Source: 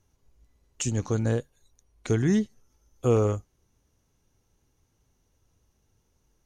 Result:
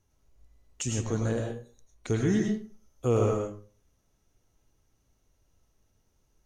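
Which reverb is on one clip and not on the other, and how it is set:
comb and all-pass reverb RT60 0.41 s, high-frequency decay 0.65×, pre-delay 65 ms, DRR 0.5 dB
level −3.5 dB

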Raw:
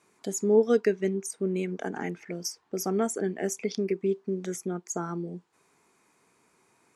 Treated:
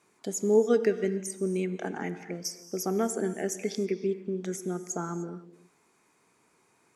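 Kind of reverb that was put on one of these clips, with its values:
reverb whose tail is shaped and stops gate 330 ms flat, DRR 11.5 dB
level −1 dB

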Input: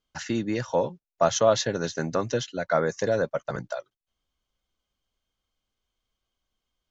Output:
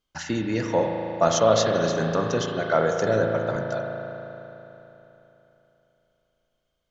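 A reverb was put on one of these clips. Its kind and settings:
spring reverb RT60 3.4 s, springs 36 ms, chirp 50 ms, DRR 1.5 dB
level +1 dB

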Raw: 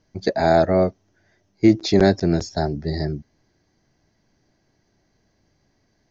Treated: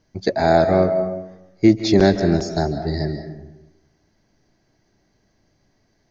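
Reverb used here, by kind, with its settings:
comb and all-pass reverb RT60 1 s, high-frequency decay 0.55×, pre-delay 115 ms, DRR 8.5 dB
level +1 dB

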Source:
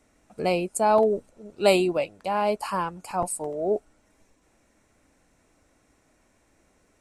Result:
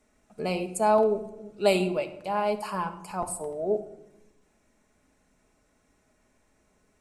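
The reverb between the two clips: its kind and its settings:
rectangular room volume 2,800 cubic metres, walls furnished, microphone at 1.4 metres
level −4.5 dB

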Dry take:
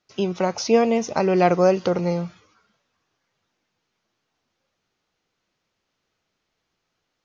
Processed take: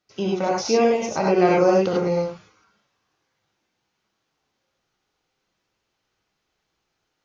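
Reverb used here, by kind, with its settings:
reverb whose tail is shaped and stops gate 120 ms rising, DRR −2.5 dB
level −3.5 dB

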